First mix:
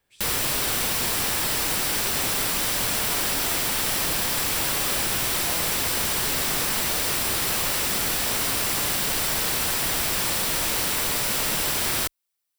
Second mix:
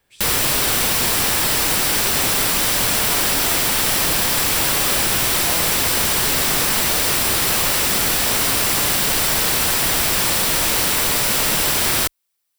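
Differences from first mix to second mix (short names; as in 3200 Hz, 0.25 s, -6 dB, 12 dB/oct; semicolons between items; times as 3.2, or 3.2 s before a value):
speech +7.0 dB; background +6.5 dB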